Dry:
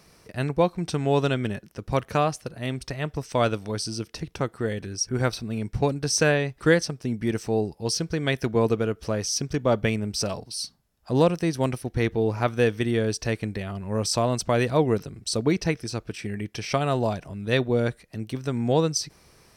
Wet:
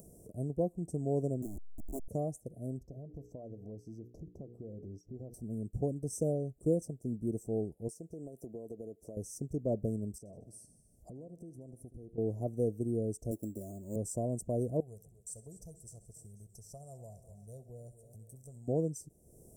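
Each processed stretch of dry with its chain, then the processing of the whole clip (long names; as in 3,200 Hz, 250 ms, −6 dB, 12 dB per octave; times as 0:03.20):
0:01.42–0:02.08: hold until the input has moved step −22.5 dBFS + phaser with its sweep stopped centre 510 Hz, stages 6
0:02.79–0:05.34: mains-hum notches 60/120/180/240/300/360/420/480 Hz + downward compressor 5 to 1, threshold −32 dBFS + moving average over 5 samples
0:07.88–0:09.17: high-pass filter 380 Hz 6 dB per octave + downward compressor 10 to 1, threshold −29 dBFS
0:10.18–0:12.18: high-shelf EQ 10,000 Hz −10.5 dB + downward compressor, threshold −37 dBFS + repeating echo 75 ms, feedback 52%, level −15.5 dB
0:13.31–0:13.96: high-pass filter 110 Hz + comb filter 3.3 ms, depth 58% + sample-rate reduction 7,700 Hz
0:14.80–0:18.68: guitar amp tone stack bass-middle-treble 10-0-10 + repeating echo 65 ms, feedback 42%, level −16.5 dB + feedback echo with a swinging delay time 245 ms, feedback 57%, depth 88 cents, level −17 dB
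whole clip: Chebyshev band-stop filter 710–7,200 Hz, order 4; parametric band 830 Hz −8.5 dB 0.61 octaves; upward compression, threshold −37 dBFS; level −8.5 dB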